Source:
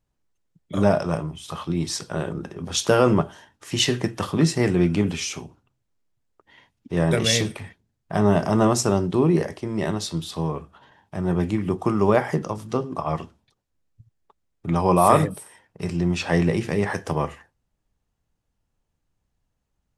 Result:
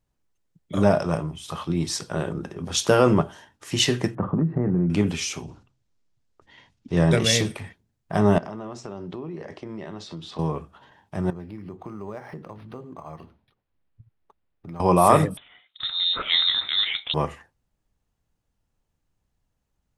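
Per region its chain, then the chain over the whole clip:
4.15–4.9 inverse Chebyshev low-pass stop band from 7600 Hz, stop band 80 dB + bell 170 Hz +10.5 dB 1.3 oct + compressor 10:1, threshold -18 dBFS
5.43–7.19 LPF 5200 Hz + tone controls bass +3 dB, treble +9 dB + sustainer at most 130 dB/s
8.38–10.39 HPF 160 Hz 6 dB/oct + compressor 8:1, threshold -31 dBFS + air absorption 130 m
11.3–14.8 compressor 2.5:1, threshold -41 dBFS + decimation joined by straight lines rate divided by 6×
15.37–17.14 HPF 170 Hz 24 dB/oct + inverted band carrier 3900 Hz
whole clip: dry

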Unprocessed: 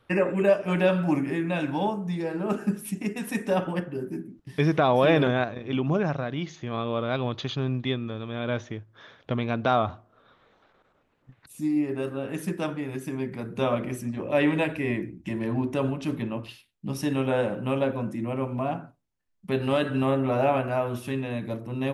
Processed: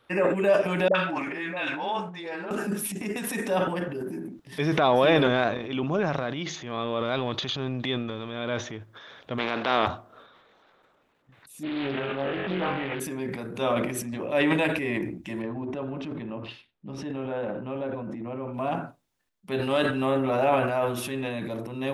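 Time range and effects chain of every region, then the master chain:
0.88–2.51 LPF 2300 Hz + tilt +4.5 dB/oct + dispersion highs, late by 69 ms, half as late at 640 Hz
9.38–9.86 spectral contrast lowered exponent 0.53 + BPF 190–5700 Hz + air absorption 240 m
11.63–13 CVSD 16 kbps + flutter echo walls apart 3.7 m, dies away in 0.68 s + Doppler distortion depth 0.49 ms
15.42–18.54 tape spacing loss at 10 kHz 28 dB + compressor 2:1, threshold -30 dBFS
whole clip: bell 3600 Hz +3.5 dB 0.22 oct; transient shaper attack -4 dB, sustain +9 dB; low shelf 170 Hz -11 dB; gain +1.5 dB

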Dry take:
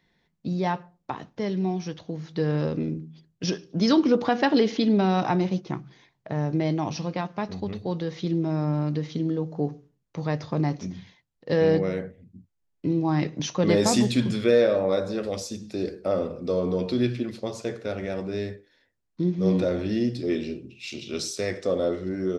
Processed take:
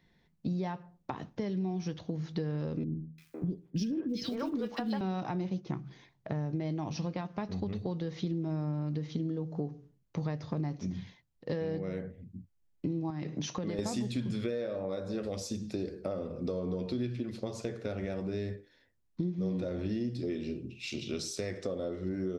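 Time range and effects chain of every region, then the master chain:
2.84–5.01 G.711 law mismatch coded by A + three bands offset in time lows, highs, mids 0.34/0.5 s, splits 390/1900 Hz
13.1–13.79 HPF 110 Hz + compressor 4:1, threshold -28 dBFS
whole clip: compressor 6:1, threshold -32 dBFS; low shelf 250 Hz +7 dB; gain -2.5 dB

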